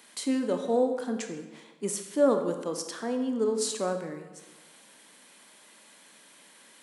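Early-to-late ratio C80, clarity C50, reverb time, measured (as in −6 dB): 9.0 dB, 7.5 dB, 1.2 s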